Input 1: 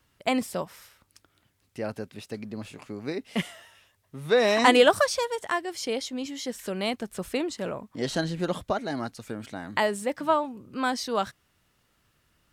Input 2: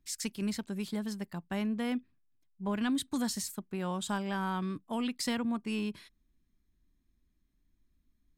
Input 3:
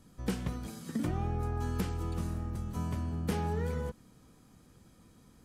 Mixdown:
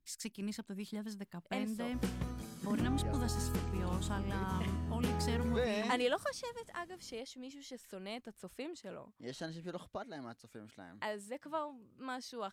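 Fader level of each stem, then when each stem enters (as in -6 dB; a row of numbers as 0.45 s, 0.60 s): -15.5 dB, -7.0 dB, -3.5 dB; 1.25 s, 0.00 s, 1.75 s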